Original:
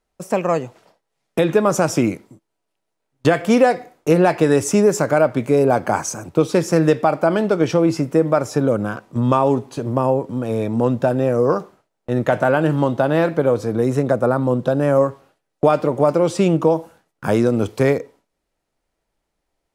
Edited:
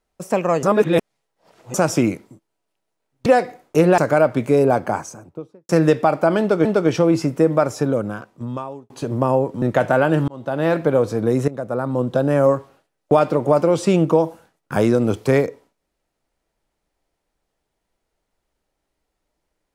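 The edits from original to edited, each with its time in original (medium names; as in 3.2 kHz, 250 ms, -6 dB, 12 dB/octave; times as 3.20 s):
0.63–1.74 s: reverse
3.26–3.58 s: delete
4.30–4.98 s: delete
5.54–6.69 s: studio fade out
7.40–7.65 s: loop, 2 plays
8.36–9.65 s: fade out
10.37–12.14 s: delete
12.80–13.28 s: fade in
14.00–14.73 s: fade in, from -15 dB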